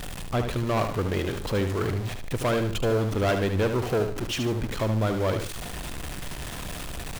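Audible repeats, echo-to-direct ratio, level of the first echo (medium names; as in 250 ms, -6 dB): 2, -7.0 dB, -7.5 dB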